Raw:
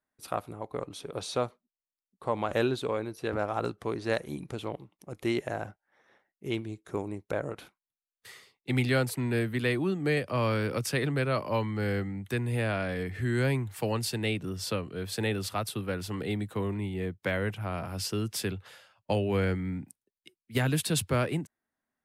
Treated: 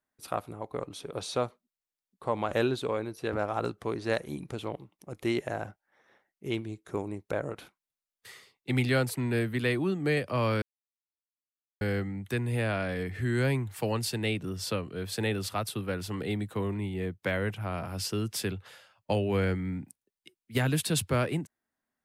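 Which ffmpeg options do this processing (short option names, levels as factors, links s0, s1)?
-filter_complex "[0:a]asplit=3[s0][s1][s2];[s0]atrim=end=10.62,asetpts=PTS-STARTPTS,afade=t=out:st=10.616:d=0.004:c=hsin[s3];[s1]atrim=start=10.62:end=11.81,asetpts=PTS-STARTPTS,volume=0[s4];[s2]atrim=start=11.81,asetpts=PTS-STARTPTS,afade=t=in:d=0.004:c=hsin[s5];[s3][s4][s5]concat=n=3:v=0:a=1"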